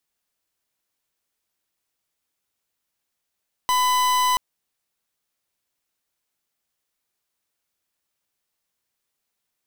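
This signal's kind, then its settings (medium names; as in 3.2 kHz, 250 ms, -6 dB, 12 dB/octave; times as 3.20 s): pulse 1 kHz, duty 43% -19.5 dBFS 0.68 s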